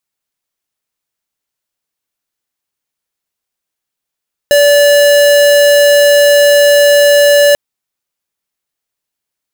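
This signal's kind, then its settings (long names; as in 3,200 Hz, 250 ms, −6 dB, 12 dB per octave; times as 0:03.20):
tone square 578 Hz −6.5 dBFS 3.04 s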